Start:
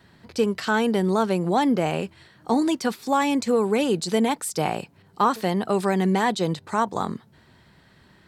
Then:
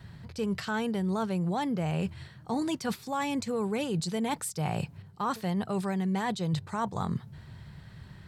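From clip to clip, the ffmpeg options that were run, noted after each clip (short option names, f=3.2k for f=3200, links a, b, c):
-af "lowshelf=f=190:t=q:w=1.5:g=10.5,areverse,acompressor=threshold=-28dB:ratio=6,areverse"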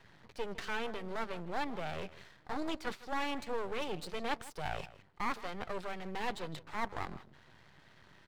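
-filter_complex "[0:a]acrossover=split=290 4200:gain=0.126 1 0.141[a][b][c];[a][b][c]amix=inputs=3:normalize=0,asplit=2[d][e];[e]adelay=157.4,volume=-17dB,highshelf=f=4k:g=-3.54[f];[d][f]amix=inputs=2:normalize=0,aeval=exprs='max(val(0),0)':c=same,volume=1dB"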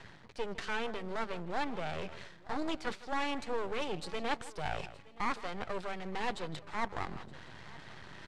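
-af "lowpass=f=9.7k:w=0.5412,lowpass=f=9.7k:w=1.3066,areverse,acompressor=mode=upward:threshold=-40dB:ratio=2.5,areverse,aecho=1:1:920|1840:0.0891|0.0223,volume=1.5dB"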